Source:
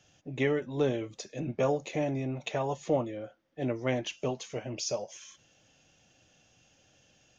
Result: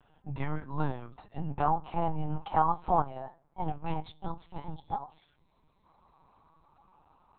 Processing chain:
pitch glide at a constant tempo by +8 semitones starting unshifted
drawn EQ curve 100 Hz 0 dB, 150 Hz +11 dB, 310 Hz 0 dB, 510 Hz −15 dB, 770 Hz +13 dB, 1,100 Hz +15 dB, 2,300 Hz −5 dB
gain on a spectral selection 0:03.69–0:05.86, 420–1,900 Hz −9 dB
on a send at −20 dB: convolution reverb RT60 0.60 s, pre-delay 6 ms
on the sum: linear-prediction vocoder at 8 kHz pitch kept
level −3.5 dB

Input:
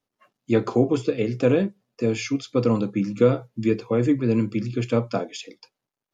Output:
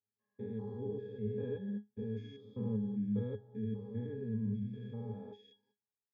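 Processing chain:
spectrum averaged block by block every 200 ms
resonances in every octave G#, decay 0.17 s
level −4 dB

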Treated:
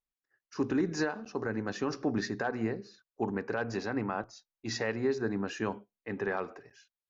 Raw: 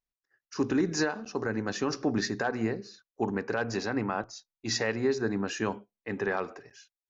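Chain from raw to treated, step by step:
high-shelf EQ 4,800 Hz −9 dB
level −2.5 dB

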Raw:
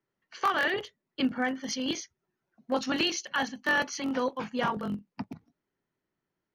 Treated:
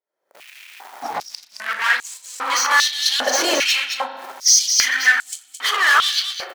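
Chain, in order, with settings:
played backwards from end to start
camcorder AGC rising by 75 dB per second
notch filter 2,800 Hz, Q 9.2
leveller curve on the samples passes 5
double-tracking delay 36 ms −12 dB
single-tap delay 218 ms −6.5 dB
spring reverb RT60 1.7 s, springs 42 ms, chirp 20 ms, DRR 9 dB
high-pass on a step sequencer 2.5 Hz 560–7,600 Hz
level −1 dB

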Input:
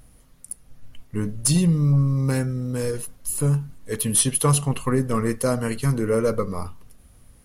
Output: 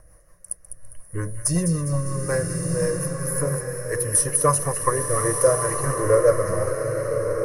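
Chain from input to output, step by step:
parametric band 870 Hz +15 dB 0.97 octaves
phaser with its sweep stopped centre 890 Hz, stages 6
on a send: delay with a high-pass on its return 202 ms, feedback 48%, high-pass 2,000 Hz, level −7 dB
on the sum: rotating-speaker cabinet horn 5.5 Hz
EQ curve with evenly spaced ripples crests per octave 1.2, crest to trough 8 dB
slow-attack reverb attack 1,240 ms, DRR 3 dB
level +1.5 dB

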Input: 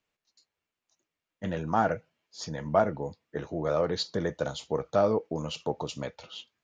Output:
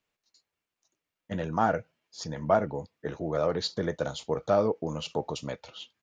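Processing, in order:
tempo change 1.1×

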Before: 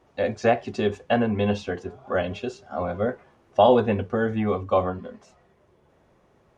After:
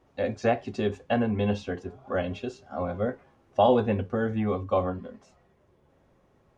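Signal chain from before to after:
low-shelf EQ 240 Hz +5 dB
tuned comb filter 270 Hz, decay 0.16 s, harmonics all, mix 50%

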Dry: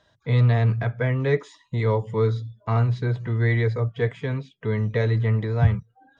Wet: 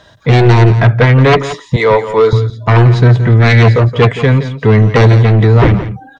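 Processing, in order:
0:01.76–0:02.33: high-pass filter 440 Hz 12 dB per octave
sine wavefolder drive 12 dB, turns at −6.5 dBFS
on a send: single-tap delay 171 ms −12.5 dB
on the sum: level +3.5 dB

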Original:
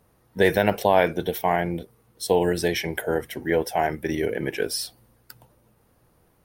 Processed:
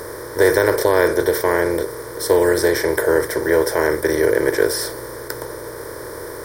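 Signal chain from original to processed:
compressor on every frequency bin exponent 0.4
phaser with its sweep stopped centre 740 Hz, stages 6
level +3.5 dB

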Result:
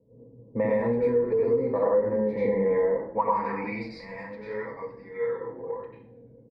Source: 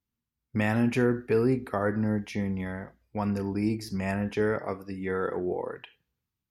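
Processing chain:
band-pass filter sweep 570 Hz → 5,400 Hz, 0:03.05–0:03.86
noise in a band 58–500 Hz −75 dBFS
EQ curve with evenly spaced ripples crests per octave 0.97, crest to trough 16 dB
dense smooth reverb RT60 0.54 s, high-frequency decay 0.85×, pre-delay 80 ms, DRR −8 dB
in parallel at +3 dB: brickwall limiter −20 dBFS, peak gain reduction 13 dB
on the sum: low-pass that shuts in the quiet parts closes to 590 Hz, open at −13.5 dBFS
downward compressor 6 to 1, threshold −26 dBFS, peak gain reduction 15.5 dB
comb filter 6.1 ms, depth 48%
on a send: echo with shifted repeats 112 ms, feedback 64%, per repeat −74 Hz, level −22.5 dB
on the sum: level +3 dB

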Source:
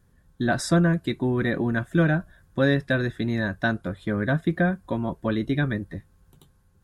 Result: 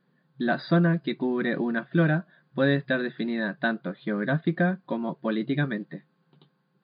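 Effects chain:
one scale factor per block 7 bits
brick-wall band-pass 130–4,900 Hz
level −1.5 dB

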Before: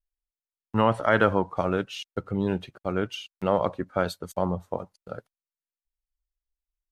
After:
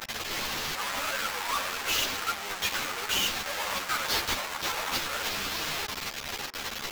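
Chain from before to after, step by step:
sign of each sample alone
high-pass filter 1,100 Hz 12 dB per octave
sample-rate reduction 9,500 Hz, jitter 20%
on a send at −18 dB: convolution reverb RT60 0.45 s, pre-delay 3 ms
on the sum: string-ensemble chorus
level +5.5 dB

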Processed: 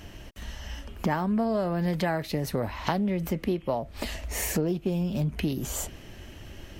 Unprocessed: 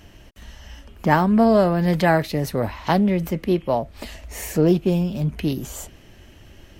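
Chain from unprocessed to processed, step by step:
downward compressor 6 to 1, threshold −27 dBFS, peak gain reduction 14.5 dB
level +2.5 dB

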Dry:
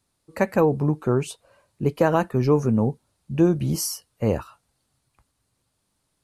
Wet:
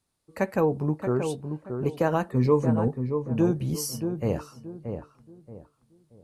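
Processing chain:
0:02.31–0:02.88: EQ curve with evenly spaced ripples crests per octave 1, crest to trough 12 dB
feedback echo with a low-pass in the loop 628 ms, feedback 31%, low-pass 1,200 Hz, level −6.5 dB
on a send at −16 dB: convolution reverb RT60 0.30 s, pre-delay 3 ms
on the sum: level −5 dB

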